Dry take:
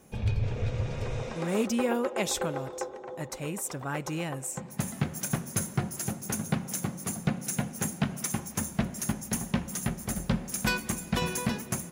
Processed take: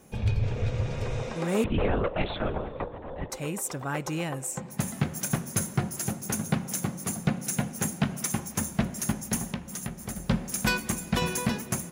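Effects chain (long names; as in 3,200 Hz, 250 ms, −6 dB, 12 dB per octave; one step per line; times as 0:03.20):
0:01.64–0:03.30: linear-prediction vocoder at 8 kHz whisper
0:09.48–0:10.29: downward compressor 2.5 to 1, threshold −36 dBFS, peak gain reduction 9.5 dB
level +2 dB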